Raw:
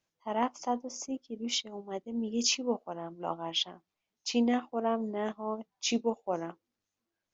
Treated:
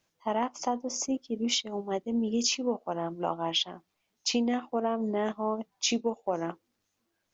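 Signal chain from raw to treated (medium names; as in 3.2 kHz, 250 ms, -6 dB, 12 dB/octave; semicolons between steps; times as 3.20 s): compression 6:1, threshold -33 dBFS, peak gain reduction 9.5 dB; trim +8 dB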